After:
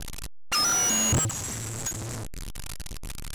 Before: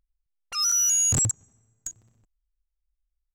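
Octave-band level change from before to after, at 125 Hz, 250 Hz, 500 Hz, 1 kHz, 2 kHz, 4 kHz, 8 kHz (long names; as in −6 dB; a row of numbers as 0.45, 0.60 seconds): +2.5, +8.0, +11.0, +9.0, +12.0, +2.5, −2.5 decibels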